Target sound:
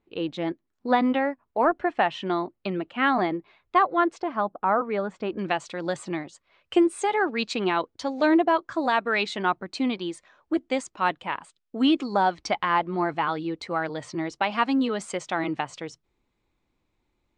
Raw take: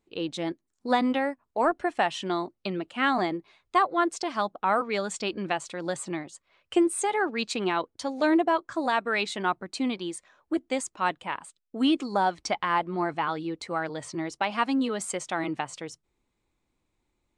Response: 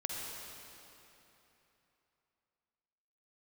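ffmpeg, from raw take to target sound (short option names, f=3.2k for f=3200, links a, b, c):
-af "asetnsamples=n=441:p=0,asendcmd='4.2 lowpass f 1500;5.39 lowpass f 5300',lowpass=3k,volume=2.5dB"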